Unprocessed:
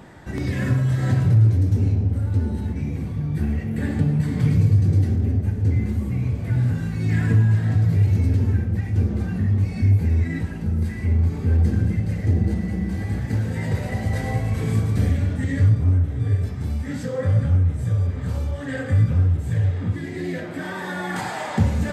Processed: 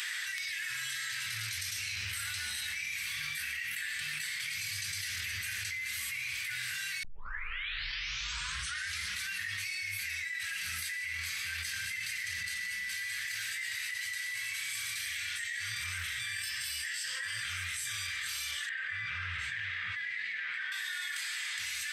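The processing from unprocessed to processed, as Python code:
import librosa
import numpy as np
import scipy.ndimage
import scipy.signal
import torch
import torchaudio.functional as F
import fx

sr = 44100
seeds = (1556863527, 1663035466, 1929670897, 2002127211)

y = fx.ripple_eq(x, sr, per_octave=1.3, db=7, at=(16.35, 17.42))
y = fx.lowpass(y, sr, hz=2000.0, slope=12, at=(18.69, 20.72))
y = fx.edit(y, sr, fx.tape_start(start_s=7.03, length_s=2.26), tone=tone)
y = scipy.signal.sosfilt(scipy.signal.cheby2(4, 50, 770.0, 'highpass', fs=sr, output='sos'), y)
y = fx.notch(y, sr, hz=7000.0, q=14.0)
y = fx.env_flatten(y, sr, amount_pct=100)
y = F.gain(torch.from_numpy(y), -2.0).numpy()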